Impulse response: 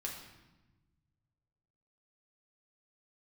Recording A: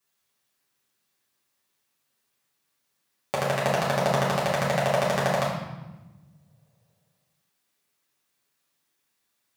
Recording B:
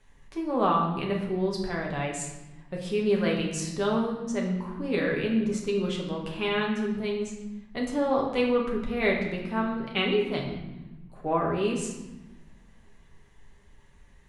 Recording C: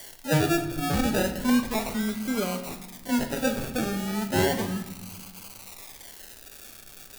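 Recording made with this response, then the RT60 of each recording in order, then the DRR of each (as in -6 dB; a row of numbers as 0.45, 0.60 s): B; 1.1 s, 1.1 s, not exponential; -7.5, -2.0, 4.5 dB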